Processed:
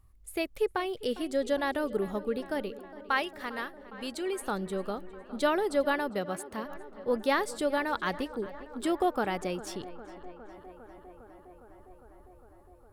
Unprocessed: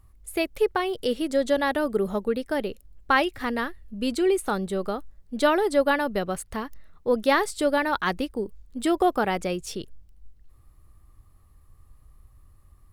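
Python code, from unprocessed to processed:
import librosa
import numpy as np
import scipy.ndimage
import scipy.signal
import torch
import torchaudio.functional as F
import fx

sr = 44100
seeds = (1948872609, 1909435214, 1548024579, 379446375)

y = fx.low_shelf(x, sr, hz=480.0, db=-9.0, at=(2.7, 4.41))
y = fx.highpass(y, sr, hz=110.0, slope=12, at=(6.09, 6.65))
y = fx.echo_tape(y, sr, ms=406, feedback_pct=86, wet_db=-16, lp_hz=3000.0, drive_db=10.0, wow_cents=34)
y = y * librosa.db_to_amplitude(-6.0)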